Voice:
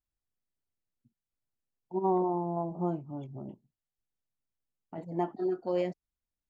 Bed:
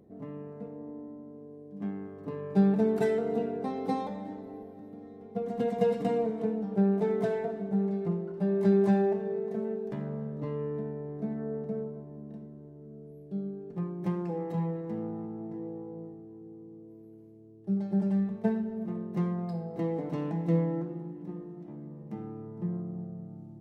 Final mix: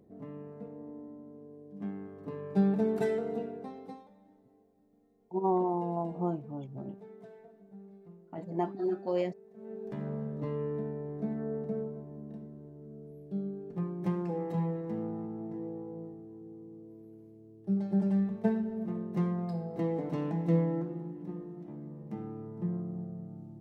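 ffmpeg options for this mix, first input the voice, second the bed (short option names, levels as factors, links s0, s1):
-filter_complex "[0:a]adelay=3400,volume=0.944[s0];[1:a]volume=8.41,afade=t=out:st=3.13:d=0.91:silence=0.112202,afade=t=in:st=9.55:d=0.54:silence=0.0841395[s1];[s0][s1]amix=inputs=2:normalize=0"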